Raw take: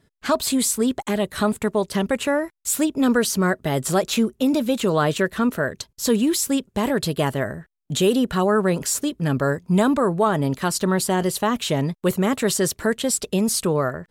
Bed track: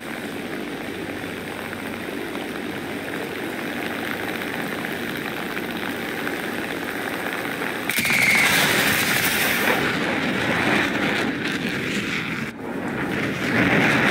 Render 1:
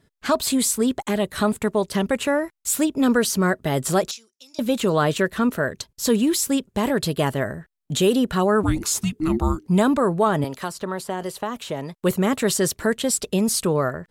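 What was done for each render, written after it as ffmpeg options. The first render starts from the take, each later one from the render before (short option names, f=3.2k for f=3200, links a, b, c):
-filter_complex "[0:a]asettb=1/sr,asplit=3[a][b][c];[a]atrim=end=4.114[d];[b]atrim=start=4.11:end=4.59,asetpts=PTS-STARTPTS,afade=t=in:d=0.004:c=qsin,afade=t=out:st=0.476:d=0.004:c=qsin,bandpass=f=5.5k:t=q:w=4.3[e];[c]atrim=start=4.586[f];[d][e]acrossfade=d=0.004:c1=hsin:c2=qsin[g];[g][f]acrossfade=d=0.004:c1=qsin:c2=hsin,asettb=1/sr,asplit=3[h][i][j];[h]atrim=end=8.634[k];[i]atrim=start=8.63:end=9.68,asetpts=PTS-STARTPTS,afade=t=in:d=0.004:c=qsin,afade=t=out:st=1.046:d=0.004:c=qsin,afreqshift=-480[l];[j]atrim=start=9.676[m];[k][l]acrossfade=d=0.004:c1=hsin:c2=qsin[n];[n][m]acrossfade=d=0.004:c1=qsin:c2=hsin,asettb=1/sr,asplit=3[o][p][q];[o]atrim=end=10.444[r];[p]atrim=start=10.44:end=12.03,asetpts=PTS-STARTPTS,afade=t=in:d=0.004:c=qsin,afade=t=out:st=1.586:d=0.004:c=qsin,acrossover=split=430|1400|3600[s][t][u][v];[s]acompressor=threshold=-36dB:ratio=3[w];[t]acompressor=threshold=-27dB:ratio=3[x];[u]acompressor=threshold=-44dB:ratio=3[y];[v]acompressor=threshold=-42dB:ratio=3[z];[w][x][y][z]amix=inputs=4:normalize=0[aa];[q]atrim=start=12.026[ab];[r][aa]acrossfade=d=0.004:c1=hsin:c2=qsin[ac];[ac][ab]acrossfade=d=0.004:c1=qsin:c2=hsin"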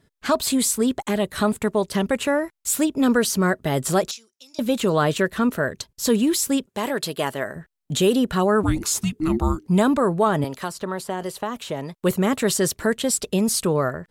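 -filter_complex "[0:a]asettb=1/sr,asplit=3[a][b][c];[a]atrim=end=6.664[d];[b]atrim=start=6.66:end=7.56,asetpts=PTS-STARTPTS,afade=t=in:d=0.004:c=qsin,afade=t=out:st=0.896:d=0.004:c=qsin,highpass=f=460:p=1[e];[c]atrim=start=7.556[f];[d][e]acrossfade=d=0.004:c1=hsin:c2=qsin[g];[g][f]acrossfade=d=0.004:c1=qsin:c2=hsin"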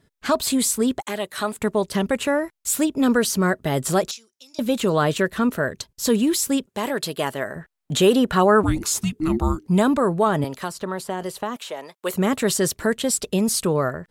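-filter_complex "[0:a]asettb=1/sr,asplit=3[a][b][c];[a]atrim=end=1.014[d];[b]atrim=start=1.01:end=1.59,asetpts=PTS-STARTPTS,afade=t=in:d=0.004:c=qsin,afade=t=out:st=0.576:d=0.004:c=qsin,highpass=f=640:p=1[e];[c]atrim=start=1.586[f];[d][e]acrossfade=d=0.004:c1=hsin:c2=qsin[g];[g][f]acrossfade=d=0.004:c1=qsin:c2=hsin,asettb=1/sr,asplit=3[h][i][j];[h]atrim=end=7.514[k];[i]atrim=start=7.51:end=8.65,asetpts=PTS-STARTPTS,afade=t=in:d=0.004:c=qsin,afade=t=out:st=1.136:d=0.004:c=qsin,equalizer=f=1.1k:w=0.43:g=5.5[l];[j]atrim=start=8.646[m];[k][l]acrossfade=d=0.004:c1=hsin:c2=qsin[n];[n][m]acrossfade=d=0.004:c1=qsin:c2=hsin,asettb=1/sr,asplit=3[o][p][q];[o]atrim=end=11.564[r];[p]atrim=start=11.56:end=12.14,asetpts=PTS-STARTPTS,afade=t=in:d=0.004:c=qsin,afade=t=out:st=0.576:d=0.004:c=qsin,highpass=520[s];[q]atrim=start=12.136[t];[r][s]acrossfade=d=0.004:c1=hsin:c2=qsin[u];[u][t]acrossfade=d=0.004:c1=qsin:c2=hsin"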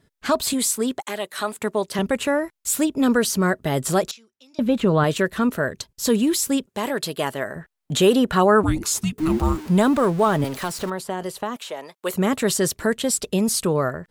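-filter_complex "[0:a]asettb=1/sr,asplit=3[a][b][c];[a]atrim=end=0.534[d];[b]atrim=start=0.53:end=1.99,asetpts=PTS-STARTPTS,afade=t=in:d=0.004:c=qsin,afade=t=out:st=1.456:d=0.004:c=qsin,highpass=f=280:p=1[e];[c]atrim=start=1.986[f];[d][e]acrossfade=d=0.004:c1=hsin:c2=qsin[g];[g][f]acrossfade=d=0.004:c1=qsin:c2=hsin,asettb=1/sr,asplit=3[h][i][j];[h]atrim=end=4.114[k];[i]atrim=start=4.11:end=5.04,asetpts=PTS-STARTPTS,afade=t=in:d=0.004:c=qsin,afade=t=out:st=0.926:d=0.004:c=qsin,bass=f=250:g=6,treble=f=4k:g=-13[l];[j]atrim=start=5.036[m];[k][l]acrossfade=d=0.004:c1=hsin:c2=qsin[n];[n][m]acrossfade=d=0.004:c1=qsin:c2=hsin,asettb=1/sr,asplit=3[o][p][q];[o]atrim=end=9.184[r];[p]atrim=start=9.18:end=10.9,asetpts=PTS-STARTPTS,afade=t=in:d=0.004:c=qsin,afade=t=out:st=1.716:d=0.004:c=qsin,aeval=exprs='val(0)+0.5*0.0266*sgn(val(0))':c=same[s];[q]atrim=start=10.896[t];[r][s]acrossfade=d=0.004:c1=hsin:c2=qsin[u];[u][t]acrossfade=d=0.004:c1=qsin:c2=hsin"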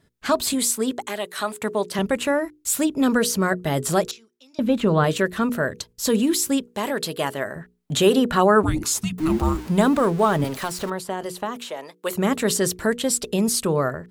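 -af "bandreject=f=60:t=h:w=6,bandreject=f=120:t=h:w=6,bandreject=f=180:t=h:w=6,bandreject=f=240:t=h:w=6,bandreject=f=300:t=h:w=6,bandreject=f=360:t=h:w=6,bandreject=f=420:t=h:w=6,bandreject=f=480:t=h:w=6"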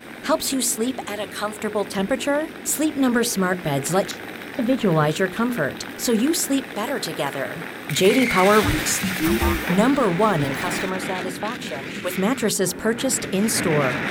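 -filter_complex "[1:a]volume=-7dB[a];[0:a][a]amix=inputs=2:normalize=0"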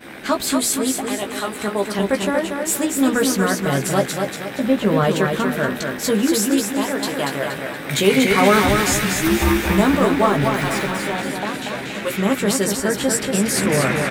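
-filter_complex "[0:a]asplit=2[a][b];[b]adelay=15,volume=-5.5dB[c];[a][c]amix=inputs=2:normalize=0,aecho=1:1:236|472|708|944|1180:0.562|0.236|0.0992|0.0417|0.0175"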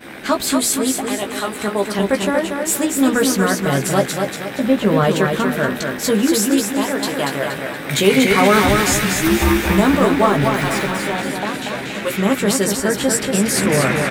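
-af "volume=2dB,alimiter=limit=-2dB:level=0:latency=1"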